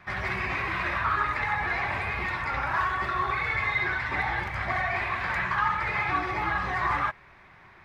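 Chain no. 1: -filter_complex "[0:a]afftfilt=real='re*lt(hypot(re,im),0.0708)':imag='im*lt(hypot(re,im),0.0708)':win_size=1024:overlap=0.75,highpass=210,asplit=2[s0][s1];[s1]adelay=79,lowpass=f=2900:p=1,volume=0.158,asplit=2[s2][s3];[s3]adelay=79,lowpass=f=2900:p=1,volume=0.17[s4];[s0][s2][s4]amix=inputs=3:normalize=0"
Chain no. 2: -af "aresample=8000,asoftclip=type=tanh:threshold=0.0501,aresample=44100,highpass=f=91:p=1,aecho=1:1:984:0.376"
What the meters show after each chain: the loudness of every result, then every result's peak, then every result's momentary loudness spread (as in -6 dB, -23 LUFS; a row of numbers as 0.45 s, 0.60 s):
-36.5 LUFS, -30.0 LUFS; -25.0 dBFS, -21.0 dBFS; 2 LU, 2 LU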